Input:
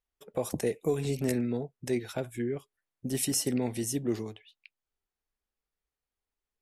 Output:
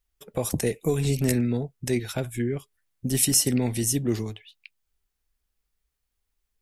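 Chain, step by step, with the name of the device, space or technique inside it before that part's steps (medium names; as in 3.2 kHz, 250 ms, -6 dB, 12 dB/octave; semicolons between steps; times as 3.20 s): smiley-face EQ (bass shelf 94 Hz +8 dB; peaking EQ 550 Hz -6 dB 2.8 oct; treble shelf 9.8 kHz +3.5 dB); trim +8 dB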